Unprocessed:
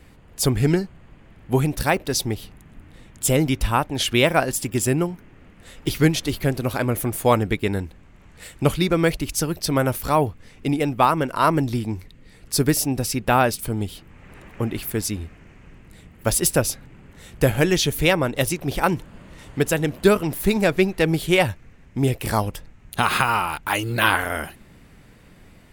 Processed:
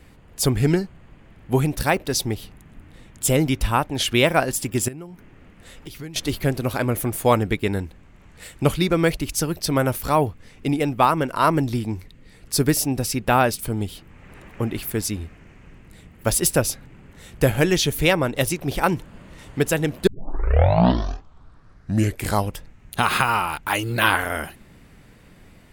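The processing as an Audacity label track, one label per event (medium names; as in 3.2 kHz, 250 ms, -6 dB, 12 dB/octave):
4.880000	6.160000	compression 3:1, threshold -38 dBFS
20.070000	20.070000	tape start 2.41 s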